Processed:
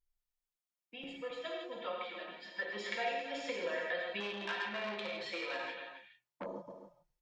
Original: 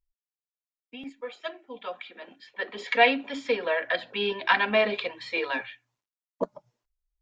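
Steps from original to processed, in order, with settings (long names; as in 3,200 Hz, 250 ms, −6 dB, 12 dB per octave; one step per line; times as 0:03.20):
comb filter 5.7 ms, depth 65%
downward compressor 5 to 1, threshold −32 dBFS, peak gain reduction 18.5 dB
single-tap delay 270 ms −10 dB
reverb whose tail is shaped and stops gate 190 ms flat, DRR −1.5 dB
0:04.20–0:06.46: saturating transformer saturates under 2,300 Hz
level −6.5 dB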